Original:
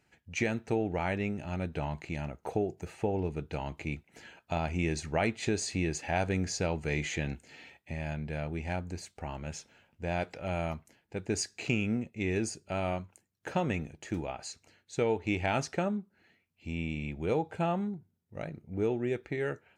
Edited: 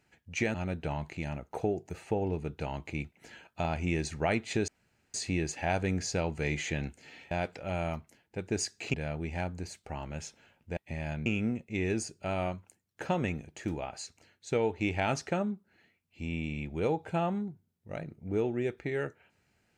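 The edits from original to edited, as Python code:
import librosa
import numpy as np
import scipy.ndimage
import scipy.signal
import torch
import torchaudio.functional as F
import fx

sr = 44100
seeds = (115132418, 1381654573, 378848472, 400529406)

y = fx.edit(x, sr, fx.cut(start_s=0.54, length_s=0.92),
    fx.insert_room_tone(at_s=5.6, length_s=0.46),
    fx.swap(start_s=7.77, length_s=0.49, other_s=10.09, other_length_s=1.63), tone=tone)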